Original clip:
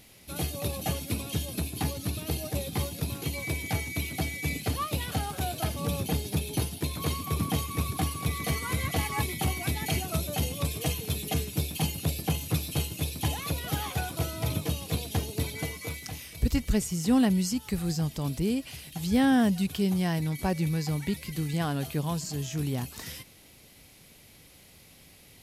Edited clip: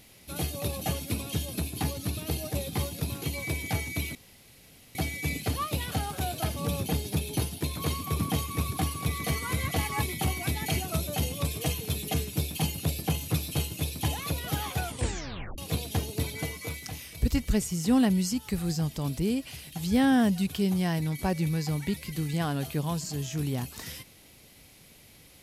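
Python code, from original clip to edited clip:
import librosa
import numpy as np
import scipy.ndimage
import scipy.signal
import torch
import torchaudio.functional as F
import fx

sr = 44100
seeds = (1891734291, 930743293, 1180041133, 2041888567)

y = fx.edit(x, sr, fx.insert_room_tone(at_s=4.15, length_s=0.8),
    fx.tape_stop(start_s=14.03, length_s=0.75), tone=tone)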